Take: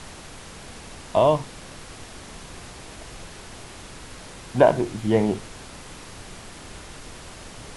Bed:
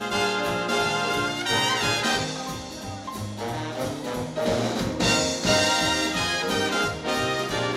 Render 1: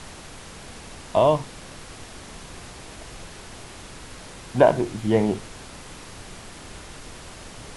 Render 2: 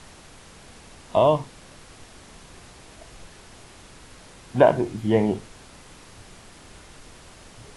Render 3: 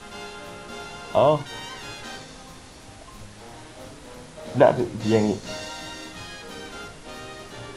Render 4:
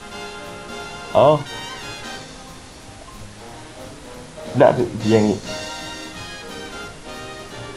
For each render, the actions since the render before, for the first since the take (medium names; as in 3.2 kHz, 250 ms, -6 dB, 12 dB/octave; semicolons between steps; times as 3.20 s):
no audible change
noise print and reduce 6 dB
add bed -14 dB
trim +5 dB; peak limiter -1 dBFS, peak gain reduction 3 dB